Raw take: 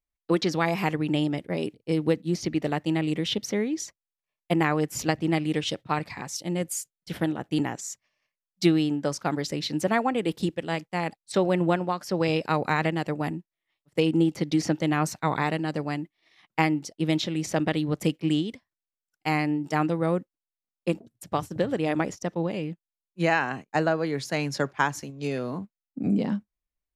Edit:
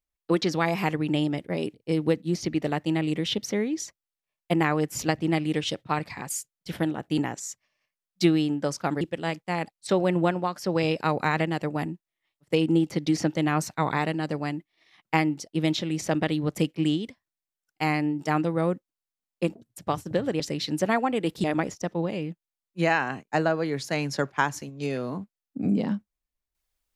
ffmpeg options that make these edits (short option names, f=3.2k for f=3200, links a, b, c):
-filter_complex "[0:a]asplit=5[a][b][c][d][e];[a]atrim=end=6.292[f];[b]atrim=start=6.698:end=9.422[g];[c]atrim=start=10.458:end=21.852[h];[d]atrim=start=9.418:end=10.462[i];[e]atrim=start=21.848[j];[f][g]acrossfade=d=0.004:c1=hsin:c2=hsin[k];[k][h]acrossfade=d=0.004:c1=hsin:c2=hsin[l];[l][i]acrossfade=d=0.004:c1=hsin:c2=hsin[m];[m][j]acrossfade=d=0.004:c1=hsin:c2=hsin"